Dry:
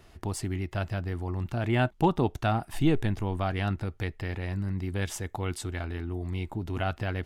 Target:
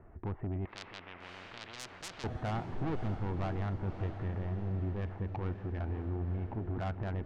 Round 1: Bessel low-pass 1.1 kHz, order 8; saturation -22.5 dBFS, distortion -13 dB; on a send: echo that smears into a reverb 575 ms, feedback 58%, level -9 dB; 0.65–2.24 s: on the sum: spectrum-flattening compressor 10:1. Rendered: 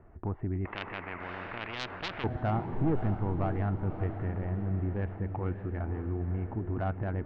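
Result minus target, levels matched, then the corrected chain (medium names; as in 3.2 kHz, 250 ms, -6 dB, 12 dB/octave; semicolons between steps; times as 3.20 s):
saturation: distortion -7 dB
Bessel low-pass 1.1 kHz, order 8; saturation -32 dBFS, distortion -6 dB; on a send: echo that smears into a reverb 575 ms, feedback 58%, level -9 dB; 0.65–2.24 s: on the sum: spectrum-flattening compressor 10:1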